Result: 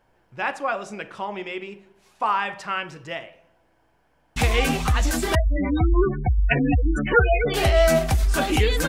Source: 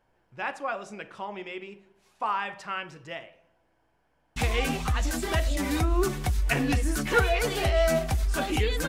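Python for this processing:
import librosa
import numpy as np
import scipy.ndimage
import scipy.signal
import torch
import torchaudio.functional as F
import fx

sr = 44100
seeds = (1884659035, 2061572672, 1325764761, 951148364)

y = fx.spec_gate(x, sr, threshold_db=-15, keep='strong', at=(5.35, 7.54))
y = F.gain(torch.from_numpy(y), 6.0).numpy()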